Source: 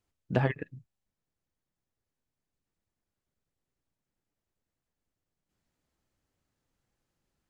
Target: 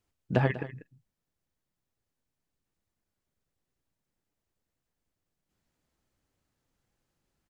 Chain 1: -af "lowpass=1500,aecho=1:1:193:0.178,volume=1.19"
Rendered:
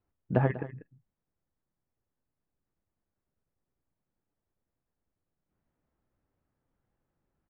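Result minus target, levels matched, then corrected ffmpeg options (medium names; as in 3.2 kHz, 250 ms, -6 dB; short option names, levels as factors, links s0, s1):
2 kHz band -4.0 dB
-af "aecho=1:1:193:0.178,volume=1.19"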